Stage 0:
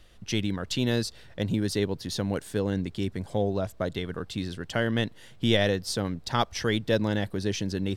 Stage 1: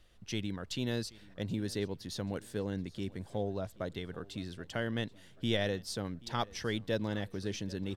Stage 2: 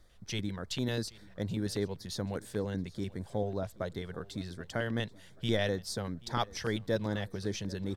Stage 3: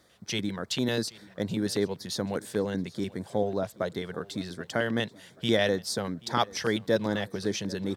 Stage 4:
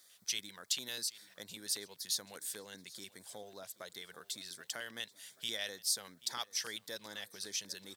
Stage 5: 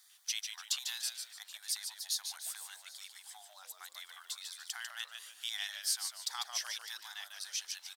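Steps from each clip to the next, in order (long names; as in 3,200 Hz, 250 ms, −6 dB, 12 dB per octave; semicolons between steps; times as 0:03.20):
repeating echo 781 ms, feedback 42%, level −21.5 dB; level −8.5 dB
auto-filter notch square 5.1 Hz 280–2,800 Hz; level +2.5 dB
high-pass filter 160 Hz 12 dB per octave; level +6.5 dB
downward compressor 1.5 to 1, threshold −39 dBFS, peak gain reduction 7.5 dB; first-order pre-emphasis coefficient 0.97; level +6 dB
linear-phase brick-wall high-pass 710 Hz; echo with shifted repeats 147 ms, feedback 34%, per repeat −120 Hz, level −6.5 dB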